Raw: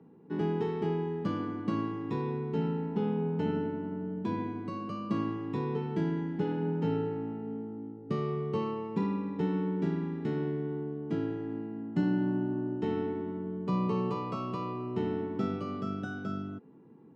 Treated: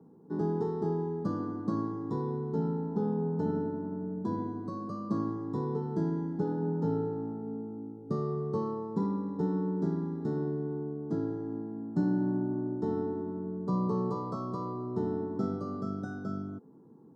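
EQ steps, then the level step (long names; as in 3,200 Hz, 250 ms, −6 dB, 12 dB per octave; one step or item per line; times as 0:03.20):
Butterworth band-reject 2,500 Hz, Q 0.74
0.0 dB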